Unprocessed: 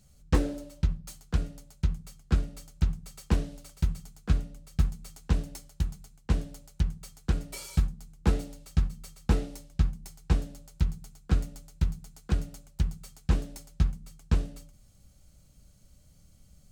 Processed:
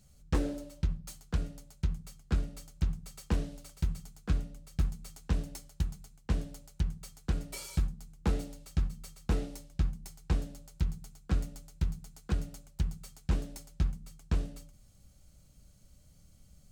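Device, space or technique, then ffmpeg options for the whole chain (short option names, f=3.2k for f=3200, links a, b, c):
clipper into limiter: -af "asoftclip=type=hard:threshold=-15.5dB,alimiter=limit=-18.5dB:level=0:latency=1:release=104,volume=-1.5dB"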